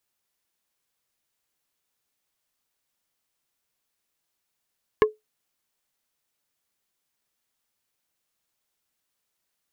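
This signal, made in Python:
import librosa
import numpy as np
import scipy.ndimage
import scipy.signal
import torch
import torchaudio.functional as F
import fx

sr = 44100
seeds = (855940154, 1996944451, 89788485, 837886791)

y = fx.strike_wood(sr, length_s=0.45, level_db=-10, body='plate', hz=429.0, decay_s=0.17, tilt_db=4.0, modes=5)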